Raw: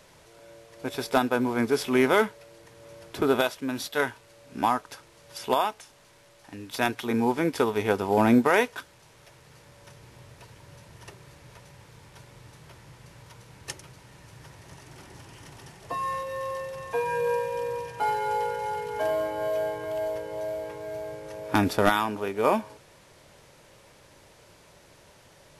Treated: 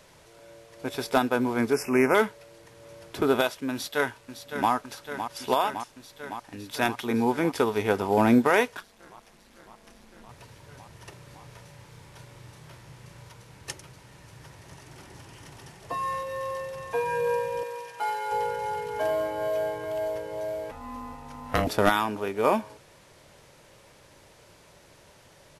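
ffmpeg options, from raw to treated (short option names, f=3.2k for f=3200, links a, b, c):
-filter_complex "[0:a]asettb=1/sr,asplit=3[a][b][c];[a]atrim=end=1.734[d];[b]atrim=start=1.73:end=2.15,asetpts=PTS-STARTPTS,afade=t=in:d=0.004:c=qsin,afade=t=out:st=0.416:d=0.004:c=qsin,asuperstop=centerf=3700:order=12:qfactor=1.7[e];[c]atrim=start=2.146[f];[d][e]acrossfade=d=0.004:c1=hsin:c2=qsin[g];[g][f]acrossfade=d=0.004:c1=qsin:c2=hsin,asplit=2[h][i];[i]afade=t=in:st=3.72:d=0.01,afade=t=out:st=4.71:d=0.01,aecho=0:1:560|1120|1680|2240|2800|3360|3920|4480|5040|5600|6160|6720:0.354813|0.283851|0.227081|0.181664|0.145332|0.116265|0.0930122|0.0744098|0.0595278|0.0476222|0.0380978|0.0304782[j];[h][j]amix=inputs=2:normalize=0,asettb=1/sr,asplit=3[k][l][m];[k]atrim=end=8.774[n];[l]atrim=start=8.77:end=10.29,asetpts=PTS-STARTPTS,afade=t=in:d=0.004:c=qsin,afade=t=out:st=1.516:d=0.004:c=qsin,aeval=exprs='val(0)*sin(2*PI*100*n/s)':c=same[o];[m]atrim=start=10.286[p];[n][o]acrossfade=d=0.004:c1=hsin:c2=qsin[q];[q][p]acrossfade=d=0.004:c1=qsin:c2=hsin,asettb=1/sr,asplit=3[r][s][t];[r]atrim=end=11.094[u];[s]atrim=start=11.09:end=13.29,asetpts=PTS-STARTPTS,afade=t=in:d=0.004:c=qsin,afade=t=out:st=2.196:d=0.004:c=qsin,asplit=2[v][w];[w]adelay=33,volume=-6dB[x];[v][x]amix=inputs=2:normalize=0,atrim=end_sample=97020[y];[t]atrim=start=13.286[z];[u][y]acrossfade=d=0.004:c1=hsin:c2=qsin[aa];[aa][z]acrossfade=d=0.004:c1=qsin:c2=hsin,asettb=1/sr,asplit=3[ab][ac][ad];[ab]atrim=end=17.634[ae];[ac]atrim=start=17.63:end=18.32,asetpts=PTS-STARTPTS,afade=t=in:d=0.004:c=qsin,afade=t=out:st=0.686:d=0.004:c=qsin,highpass=f=820:p=1[af];[ad]atrim=start=18.316[ag];[ae][af]acrossfade=d=0.004:c1=hsin:c2=qsin[ah];[ah][ag]acrossfade=d=0.004:c1=qsin:c2=hsin,asettb=1/sr,asplit=3[ai][aj][ak];[ai]atrim=end=20.714[al];[aj]atrim=start=20.71:end=21.67,asetpts=PTS-STARTPTS,afade=t=in:d=0.004:c=qsin,afade=t=out:st=0.956:d=0.004:c=qsin,aeval=exprs='val(0)*sin(2*PI*390*n/s)':c=same[am];[ak]atrim=start=21.666[an];[al][am]acrossfade=d=0.004:c1=hsin:c2=qsin[ao];[ao][an]acrossfade=d=0.004:c1=qsin:c2=hsin"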